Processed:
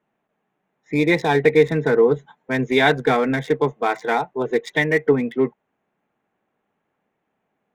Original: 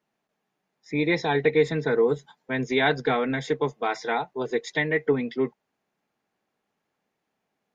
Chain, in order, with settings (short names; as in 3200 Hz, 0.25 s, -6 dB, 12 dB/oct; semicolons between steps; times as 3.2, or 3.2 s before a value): Wiener smoothing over 9 samples; gain +6 dB